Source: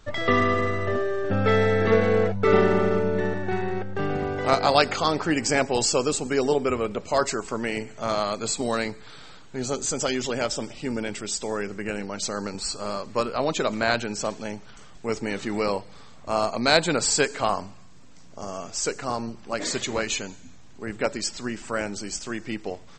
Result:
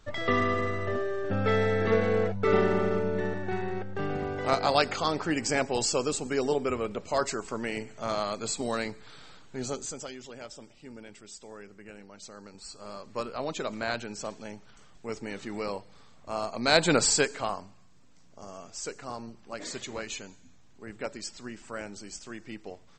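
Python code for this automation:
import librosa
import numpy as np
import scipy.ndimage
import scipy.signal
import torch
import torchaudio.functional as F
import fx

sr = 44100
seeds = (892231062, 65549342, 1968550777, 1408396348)

y = fx.gain(x, sr, db=fx.line((9.68, -5.0), (10.16, -17.0), (12.45, -17.0), (13.21, -8.5), (16.5, -8.5), (16.94, 1.5), (17.61, -10.0)))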